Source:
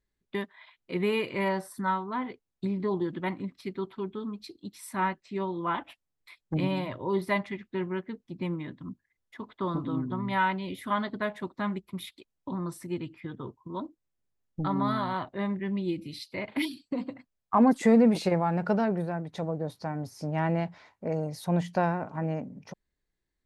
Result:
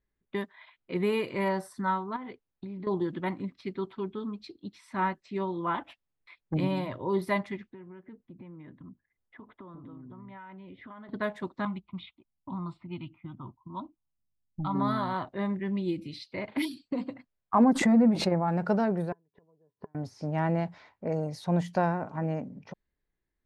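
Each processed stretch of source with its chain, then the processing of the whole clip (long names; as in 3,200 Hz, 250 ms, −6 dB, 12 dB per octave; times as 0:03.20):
0:02.16–0:02.87: low-pass filter 10,000 Hz + downward compressor 10 to 1, threshold −36 dBFS
0:07.70–0:11.09: high-frequency loss of the air 320 metres + downward compressor 10 to 1, threshold −43 dBFS
0:11.65–0:14.75: Butterworth low-pass 7,500 Hz + phaser with its sweep stopped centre 1,700 Hz, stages 6 + low-pass that shuts in the quiet parts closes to 480 Hz, open at −31.5 dBFS
0:17.64–0:18.48: low-pass filter 1,400 Hz 6 dB per octave + notch filter 450 Hz, Q 5.1 + background raised ahead of every attack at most 89 dB per second
0:19.12–0:19.95: gate with flip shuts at −31 dBFS, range −36 dB + head-to-tape spacing loss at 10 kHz 36 dB + hollow resonant body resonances 420/1,000/1,700/2,900 Hz, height 13 dB
whole clip: low-pass that shuts in the quiet parts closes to 2,500 Hz, open at −26.5 dBFS; dynamic equaliser 2,700 Hz, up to −4 dB, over −46 dBFS, Q 1.4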